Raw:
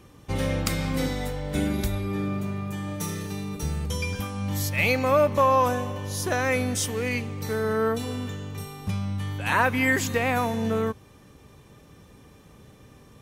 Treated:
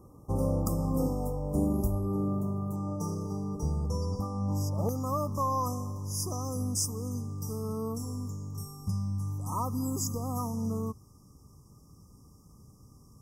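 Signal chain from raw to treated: brick-wall FIR band-stop 1300–4800 Hz; bell 4200 Hz -14 dB 1.7 oct, from 2.76 s 14000 Hz, from 4.89 s 590 Hz; gain -1.5 dB

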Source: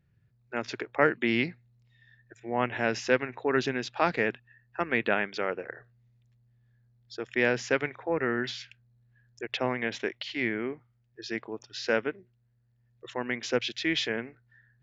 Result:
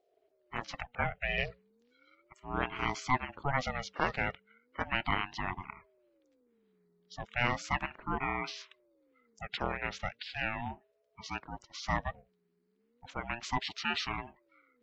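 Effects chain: bin magnitudes rounded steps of 30 dB; 0.87–1.38 fixed phaser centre 1000 Hz, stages 8; ring modulator with a swept carrier 420 Hz, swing 30%, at 0.36 Hz; gain -2 dB

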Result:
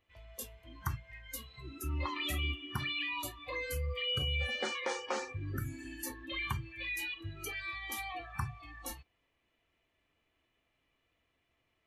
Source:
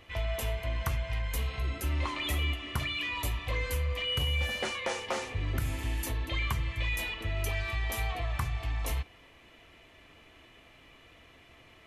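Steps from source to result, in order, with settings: spectral noise reduction 20 dB; gain -2 dB

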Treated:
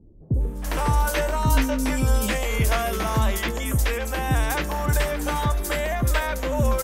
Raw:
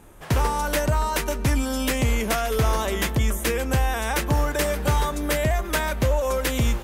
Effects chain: 0.64–2.63 doubler 19 ms -6 dB; three bands offset in time lows, highs, mids 0.34/0.41 s, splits 410/5200 Hz

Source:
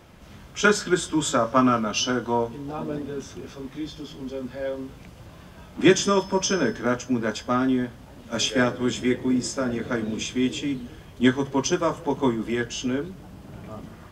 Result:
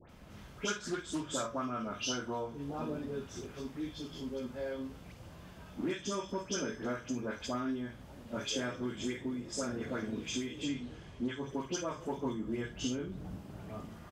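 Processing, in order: 10.56–11.28 LPF 7700 Hz 12 dB/oct; 12.25–13.38 low shelf 480 Hz +7 dB; compressor 6:1, threshold -27 dBFS, peak gain reduction 15 dB; doubler 49 ms -10 dB; dispersion highs, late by 95 ms, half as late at 1800 Hz; 0.76–1.34 Doppler distortion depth 0.19 ms; gain -6.5 dB

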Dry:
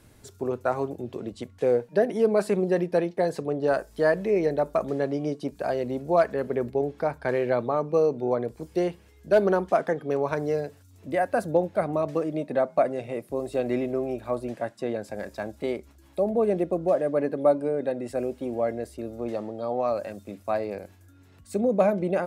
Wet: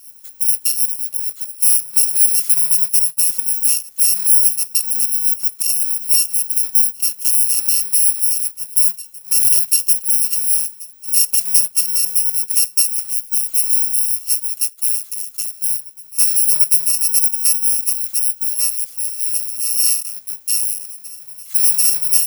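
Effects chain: FFT order left unsorted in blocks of 128 samples; tilt +4 dB/oct; on a send: reverse echo 0.744 s -21.5 dB; on the sum: maximiser -1.5 dB; noise-modulated level, depth 60%

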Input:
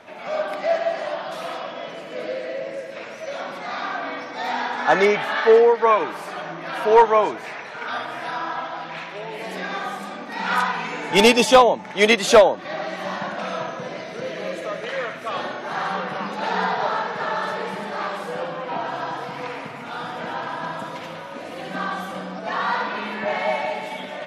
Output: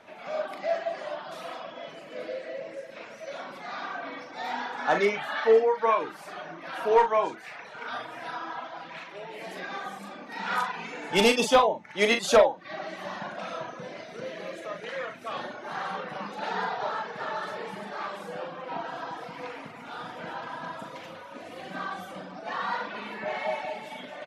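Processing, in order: reverb removal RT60 0.66 s; doubler 40 ms -7.5 dB; gain -7 dB

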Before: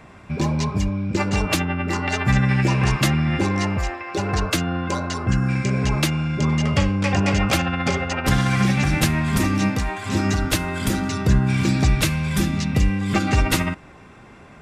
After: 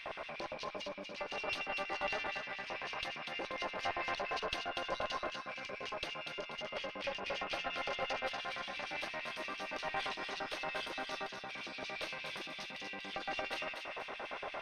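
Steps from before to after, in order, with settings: HPF 110 Hz 24 dB/oct; compressor, threshold -34 dBFS, peak gain reduction 18 dB; limiter -33 dBFS, peak gain reduction 11 dB; LFO high-pass square 8.7 Hz 570–2900 Hz; tube stage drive 32 dB, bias 0.75; polynomial smoothing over 15 samples; thinning echo 0.242 s, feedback 41%, high-pass 890 Hz, level -4.5 dB; gain +7.5 dB

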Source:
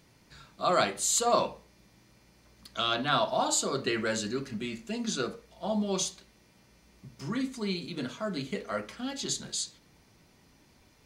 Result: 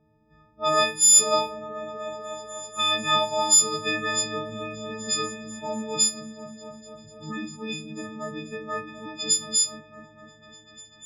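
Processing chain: frequency quantiser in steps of 6 st; low-pass opened by the level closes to 640 Hz, open at -18 dBFS; repeats that get brighter 0.246 s, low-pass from 200 Hz, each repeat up 1 oct, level -6 dB; gain -1.5 dB

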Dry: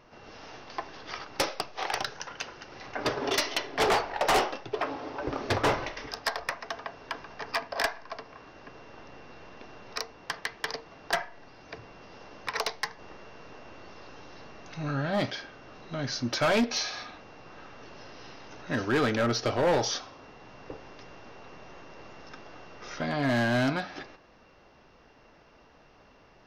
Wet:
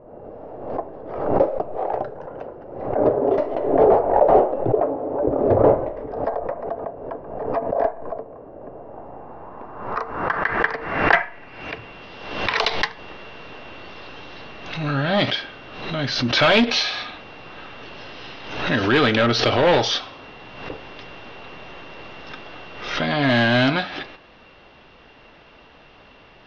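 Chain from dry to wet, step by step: low-pass sweep 580 Hz -> 3400 Hz, 8.54–12.08; backwards sustainer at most 61 dB/s; gain +7.5 dB

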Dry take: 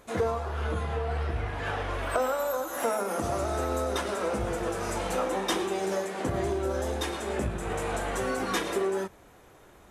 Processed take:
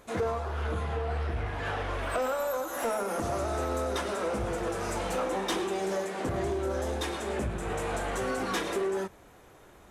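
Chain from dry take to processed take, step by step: soft clip -22.5 dBFS, distortion -18 dB; Doppler distortion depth 0.14 ms

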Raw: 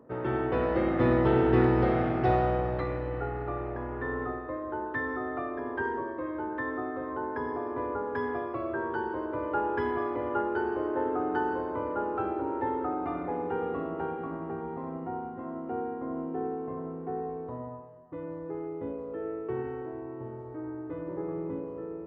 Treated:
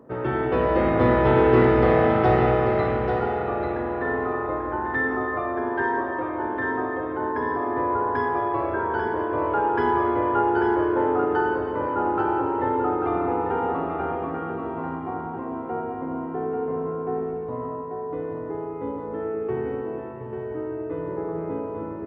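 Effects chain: echo 0.84 s -6.5 dB; spring tank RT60 3.6 s, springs 37/50 ms, chirp 50 ms, DRR 2 dB; gain +5 dB

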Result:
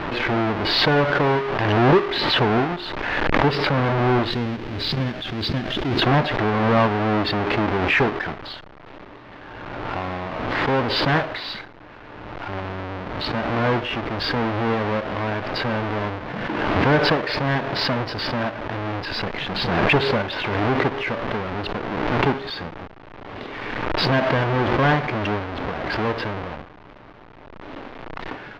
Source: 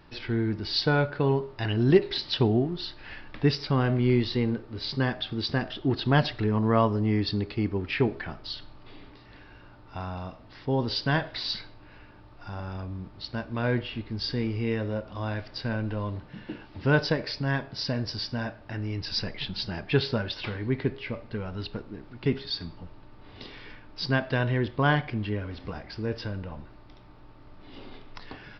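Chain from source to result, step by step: half-waves squared off; 4.31–6.02 bell 920 Hz -13 dB 2.9 oct; overdrive pedal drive 20 dB, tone 2500 Hz, clips at -1.5 dBFS; air absorption 280 m; backwards sustainer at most 27 dB/s; gain -2.5 dB

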